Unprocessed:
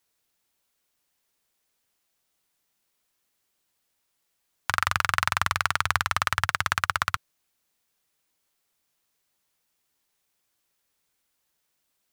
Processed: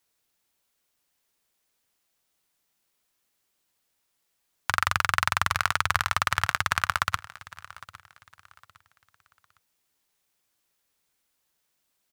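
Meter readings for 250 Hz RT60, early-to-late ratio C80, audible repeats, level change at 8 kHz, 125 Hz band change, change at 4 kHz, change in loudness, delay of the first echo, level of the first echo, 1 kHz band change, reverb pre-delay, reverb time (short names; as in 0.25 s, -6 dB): none, none, 2, 0.0 dB, 0.0 dB, 0.0 dB, 0.0 dB, 0.808 s, -19.5 dB, 0.0 dB, none, none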